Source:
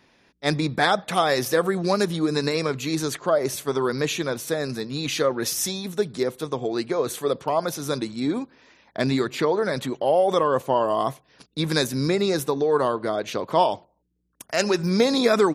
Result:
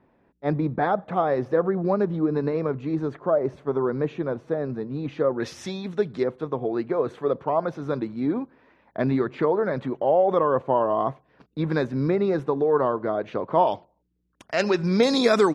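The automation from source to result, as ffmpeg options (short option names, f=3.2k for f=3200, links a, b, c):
-af "asetnsamples=n=441:p=0,asendcmd='5.4 lowpass f 2500;6.24 lowpass f 1500;13.67 lowpass f 3600;15.03 lowpass f 8200',lowpass=1k"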